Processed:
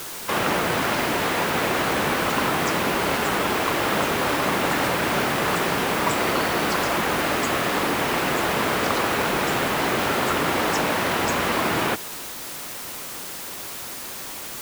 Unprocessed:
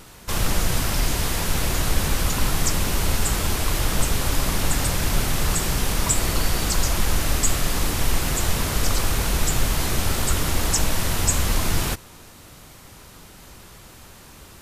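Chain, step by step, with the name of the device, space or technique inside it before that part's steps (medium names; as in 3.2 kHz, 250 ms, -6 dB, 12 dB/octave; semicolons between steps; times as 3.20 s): wax cylinder (band-pass 280–2400 Hz; wow and flutter; white noise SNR 11 dB); trim +8 dB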